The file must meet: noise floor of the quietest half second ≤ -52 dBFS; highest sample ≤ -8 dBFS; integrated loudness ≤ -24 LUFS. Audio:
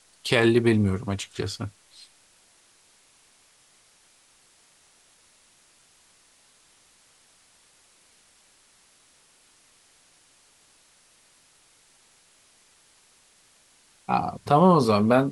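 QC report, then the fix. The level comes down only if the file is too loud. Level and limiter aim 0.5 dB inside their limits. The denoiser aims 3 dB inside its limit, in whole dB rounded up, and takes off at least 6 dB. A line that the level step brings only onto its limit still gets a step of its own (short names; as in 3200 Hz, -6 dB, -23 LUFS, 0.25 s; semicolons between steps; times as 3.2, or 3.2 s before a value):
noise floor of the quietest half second -60 dBFS: OK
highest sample -5.5 dBFS: fail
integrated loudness -22.5 LUFS: fail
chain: gain -2 dB; limiter -8.5 dBFS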